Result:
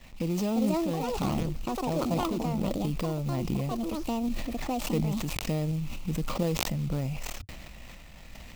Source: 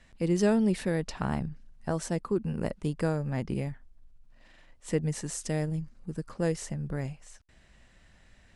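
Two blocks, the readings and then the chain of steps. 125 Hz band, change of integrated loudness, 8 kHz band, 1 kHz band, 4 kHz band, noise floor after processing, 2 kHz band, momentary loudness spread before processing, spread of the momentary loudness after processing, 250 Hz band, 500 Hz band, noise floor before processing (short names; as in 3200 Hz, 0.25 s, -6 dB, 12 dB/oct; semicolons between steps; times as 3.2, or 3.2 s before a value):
+1.5 dB, +0.5 dB, 0.0 dB, +6.0 dB, +7.5 dB, -47 dBFS, 0.0 dB, 13 LU, 14 LU, +1.5 dB, -1.0 dB, -60 dBFS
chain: switching dead time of 0.18 ms; in parallel at -2 dB: limiter -23.5 dBFS, peak gain reduction 10.5 dB; on the sum: careless resampling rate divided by 2×, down filtered, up hold; echoes that change speed 0.42 s, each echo +7 st, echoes 2; dynamic EQ 2000 Hz, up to -7 dB, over -47 dBFS, Q 1.1; companded quantiser 6-bit; compressor 2.5:1, threshold -36 dBFS, peak gain reduction 12.5 dB; thirty-one-band EQ 100 Hz -6 dB, 400 Hz -7 dB, 1600 Hz -10 dB, 2500 Hz +5 dB, 10000 Hz -4 dB; tremolo saw up 1.4 Hz, depth 45%; sustainer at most 23 dB/s; gain +7.5 dB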